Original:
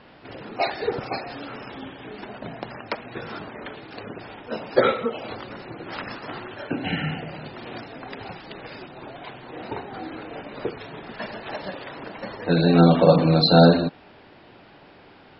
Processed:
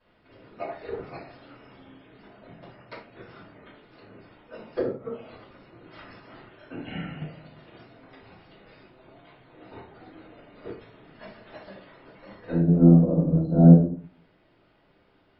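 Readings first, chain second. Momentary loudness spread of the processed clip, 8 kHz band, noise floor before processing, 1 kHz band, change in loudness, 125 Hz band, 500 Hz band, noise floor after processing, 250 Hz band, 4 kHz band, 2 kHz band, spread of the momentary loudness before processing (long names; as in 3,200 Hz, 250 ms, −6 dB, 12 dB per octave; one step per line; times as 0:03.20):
23 LU, can't be measured, −50 dBFS, −15.0 dB, +1.5 dB, +2.0 dB, −9.0 dB, −63 dBFS, +0.5 dB, −23.0 dB, −15.0 dB, 22 LU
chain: treble cut that deepens with the level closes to 390 Hz, closed at −16.5 dBFS
rectangular room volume 49 cubic metres, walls mixed, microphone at 2.7 metres
expander for the loud parts 1.5 to 1, over −23 dBFS
level −13 dB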